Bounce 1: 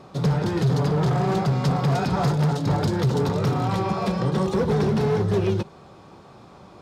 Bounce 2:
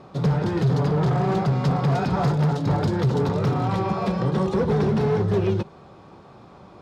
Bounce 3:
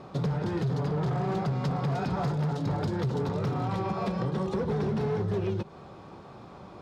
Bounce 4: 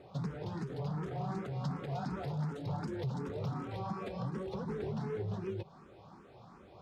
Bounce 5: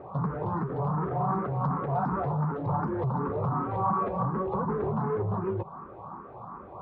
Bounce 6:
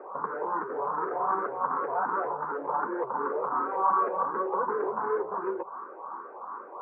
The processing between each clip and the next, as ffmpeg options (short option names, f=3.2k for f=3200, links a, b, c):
-af "aemphasis=mode=reproduction:type=cd"
-af "acompressor=threshold=-27dB:ratio=5"
-filter_complex "[0:a]asplit=2[a][b];[b]afreqshift=2.7[c];[a][c]amix=inputs=2:normalize=1,volume=-6dB"
-af "asoftclip=type=tanh:threshold=-30.5dB,lowpass=f=1.1k:t=q:w=3.8,volume=8.5dB"
-af "highpass=f=330:w=0.5412,highpass=f=330:w=1.3066,equalizer=f=490:t=q:w=4:g=4,equalizer=f=700:t=q:w=4:g=-4,equalizer=f=1k:t=q:w=4:g=5,equalizer=f=1.5k:t=q:w=4:g=8,lowpass=f=2.2k:w=0.5412,lowpass=f=2.2k:w=1.3066"